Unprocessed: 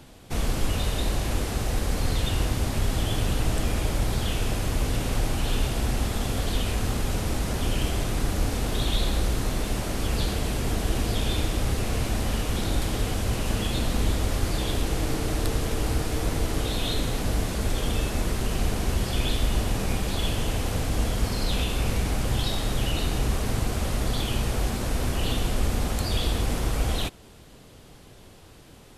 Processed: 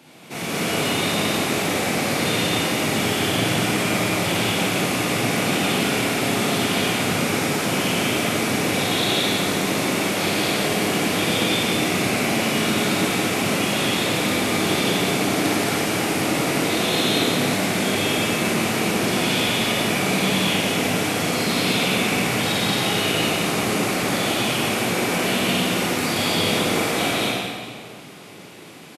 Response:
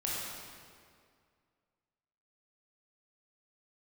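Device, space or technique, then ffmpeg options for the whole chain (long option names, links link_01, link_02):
stadium PA: -filter_complex "[0:a]highpass=frequency=160:width=0.5412,highpass=frequency=160:width=1.3066,equalizer=frequency=2300:width_type=o:width=0.41:gain=7.5,aecho=1:1:174.9|227.4:0.794|0.794[link_01];[1:a]atrim=start_sample=2205[link_02];[link_01][link_02]afir=irnorm=-1:irlink=0,volume=1dB"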